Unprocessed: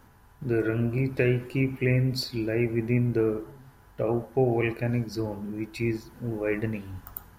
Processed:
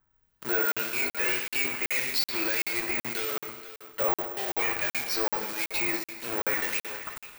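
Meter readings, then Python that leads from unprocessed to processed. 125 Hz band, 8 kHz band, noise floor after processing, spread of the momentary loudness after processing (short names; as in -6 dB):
-23.5 dB, +13.0 dB, under -85 dBFS, 7 LU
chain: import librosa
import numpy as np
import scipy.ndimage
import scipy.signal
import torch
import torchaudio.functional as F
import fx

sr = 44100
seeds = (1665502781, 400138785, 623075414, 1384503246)

p1 = fx.law_mismatch(x, sr, coded='A')
p2 = fx.recorder_agc(p1, sr, target_db=-16.5, rise_db_per_s=8.2, max_gain_db=30)
p3 = scipy.signal.sosfilt(scipy.signal.butter(2, 1200.0, 'highpass', fs=sr, output='sos'), p2)
p4 = fx.fuzz(p3, sr, gain_db=52.0, gate_db=-55.0)
p5 = p3 + (p4 * 10.0 ** (-5.0 / 20.0))
p6 = fx.harmonic_tremolo(p5, sr, hz=1.7, depth_pct=70, crossover_hz=2000.0)
p7 = fx.dmg_noise_colour(p6, sr, seeds[0], colour='brown', level_db=-66.0)
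p8 = p7 + fx.echo_single(p7, sr, ms=482, db=-14.5, dry=0)
p9 = fx.rev_gated(p8, sr, seeds[1], gate_ms=490, shape='falling', drr_db=5.5)
p10 = (np.kron(scipy.signal.resample_poly(p9, 1, 2), np.eye(2)[0]) * 2)[:len(p9)]
p11 = fx.buffer_crackle(p10, sr, first_s=0.72, period_s=0.38, block=2048, kind='zero')
y = p11 * 10.0 ** (-8.0 / 20.0)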